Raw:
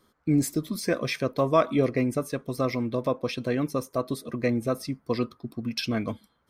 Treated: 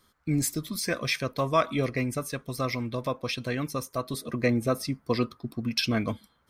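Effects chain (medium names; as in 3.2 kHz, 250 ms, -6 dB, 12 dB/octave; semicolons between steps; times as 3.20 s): peaking EQ 370 Hz -10 dB 2.8 oct, from 4.14 s -4 dB; trim +4 dB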